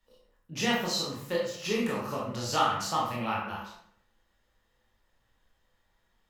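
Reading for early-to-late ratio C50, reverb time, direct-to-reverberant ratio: 2.0 dB, 0.70 s, -5.0 dB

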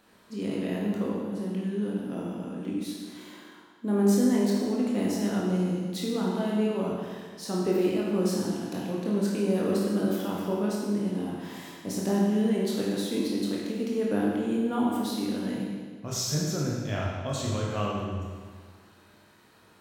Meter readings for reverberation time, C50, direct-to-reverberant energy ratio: 1.7 s, -0.5 dB, -4.5 dB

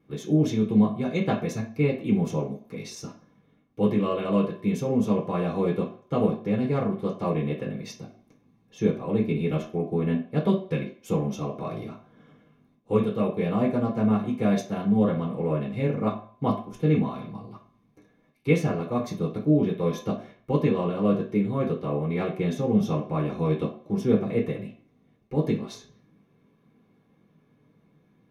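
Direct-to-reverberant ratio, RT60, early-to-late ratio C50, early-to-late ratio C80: -4.5 dB, 0.50 s, 8.5 dB, 13.5 dB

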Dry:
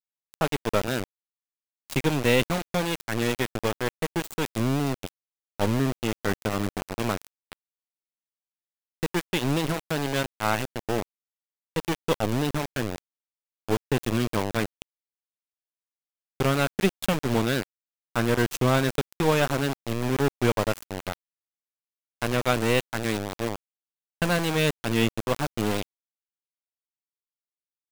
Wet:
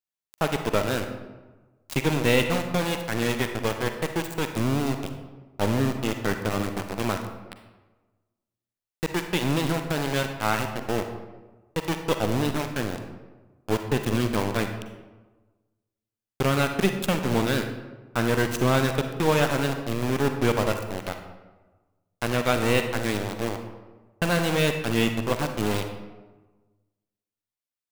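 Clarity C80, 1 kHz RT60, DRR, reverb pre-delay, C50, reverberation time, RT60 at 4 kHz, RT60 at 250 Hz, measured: 9.0 dB, 1.2 s, 6.0 dB, 39 ms, 7.0 dB, 1.2 s, 0.70 s, 1.3 s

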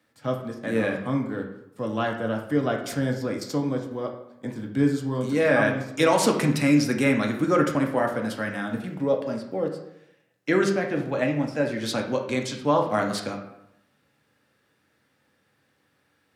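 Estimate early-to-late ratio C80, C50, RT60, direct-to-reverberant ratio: 10.0 dB, 7.0 dB, 0.80 s, 1.5 dB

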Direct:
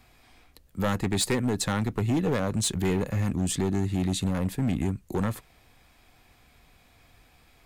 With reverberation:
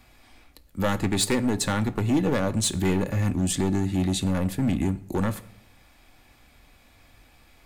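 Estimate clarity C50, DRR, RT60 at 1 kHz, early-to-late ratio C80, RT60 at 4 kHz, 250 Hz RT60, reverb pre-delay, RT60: 18.0 dB, 9.0 dB, 0.70 s, 21.0 dB, 0.50 s, 0.85 s, 3 ms, 0.70 s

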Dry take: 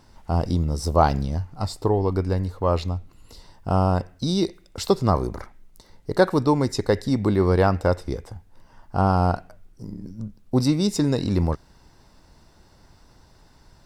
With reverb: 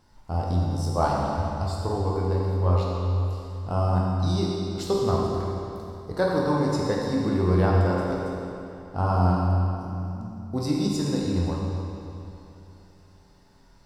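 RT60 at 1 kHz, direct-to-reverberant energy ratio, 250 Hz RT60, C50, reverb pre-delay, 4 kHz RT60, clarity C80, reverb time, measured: 2.9 s, -4.0 dB, 2.9 s, -1.0 dB, 10 ms, 2.5 s, 0.0 dB, 2.9 s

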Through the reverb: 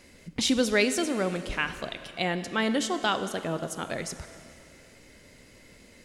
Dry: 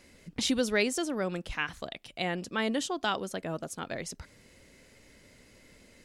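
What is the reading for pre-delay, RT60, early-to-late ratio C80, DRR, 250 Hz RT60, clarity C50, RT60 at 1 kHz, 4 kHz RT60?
6 ms, 2.6 s, 12.0 dB, 10.0 dB, 2.6 s, 11.0 dB, 2.6 s, 2.4 s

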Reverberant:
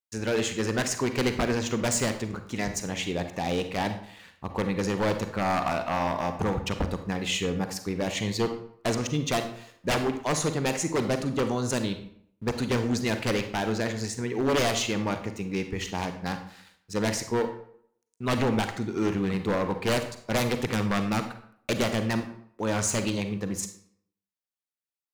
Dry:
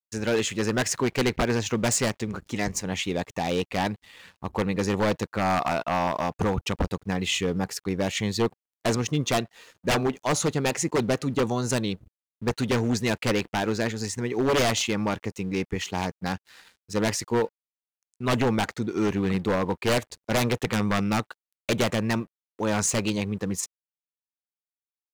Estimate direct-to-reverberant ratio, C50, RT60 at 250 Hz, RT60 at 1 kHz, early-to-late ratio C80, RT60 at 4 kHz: 7.5 dB, 9.5 dB, 0.70 s, 0.65 s, 12.5 dB, 0.45 s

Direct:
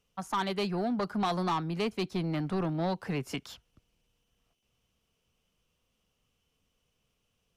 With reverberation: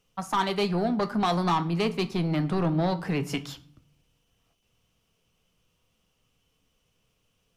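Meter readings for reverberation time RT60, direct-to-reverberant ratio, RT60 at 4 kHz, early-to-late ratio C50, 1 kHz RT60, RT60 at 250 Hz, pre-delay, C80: 0.55 s, 9.0 dB, 0.40 s, 17.0 dB, 0.50 s, 0.85 s, 6 ms, 21.0 dB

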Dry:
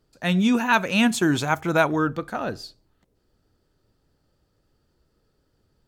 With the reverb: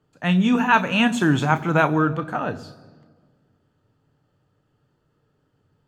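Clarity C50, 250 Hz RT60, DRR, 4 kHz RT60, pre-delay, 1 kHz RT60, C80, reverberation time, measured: 18.0 dB, 2.1 s, 9.5 dB, 1.2 s, 3 ms, 1.5 s, 19.0 dB, 1.6 s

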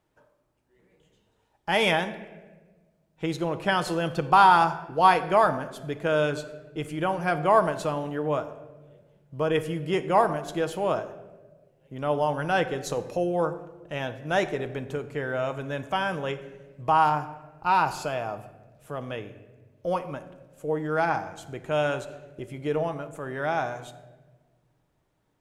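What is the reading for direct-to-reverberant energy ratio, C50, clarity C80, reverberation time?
8.0 dB, 13.0 dB, 14.5 dB, 1.3 s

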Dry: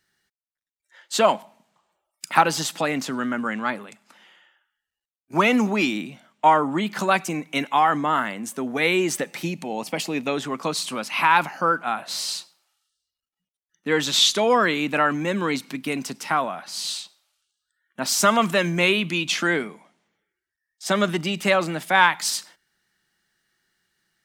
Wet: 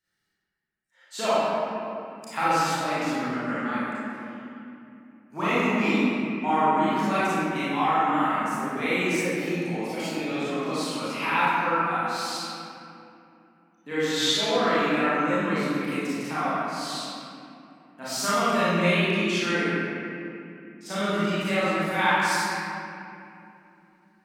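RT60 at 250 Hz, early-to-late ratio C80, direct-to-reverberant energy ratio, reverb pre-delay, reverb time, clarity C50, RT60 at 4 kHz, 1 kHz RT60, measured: 4.2 s, -3.5 dB, -12.5 dB, 28 ms, 2.8 s, -7.0 dB, 1.7 s, 2.6 s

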